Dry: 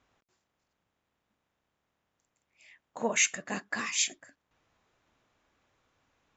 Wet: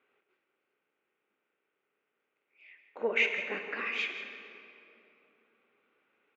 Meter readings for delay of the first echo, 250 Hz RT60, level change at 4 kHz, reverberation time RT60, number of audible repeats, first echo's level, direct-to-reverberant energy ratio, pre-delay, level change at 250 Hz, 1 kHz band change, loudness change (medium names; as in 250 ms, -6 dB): 167 ms, 3.5 s, -5.0 dB, 2.9 s, 1, -12.5 dB, 5.5 dB, 35 ms, -7.0 dB, -4.0 dB, -2.5 dB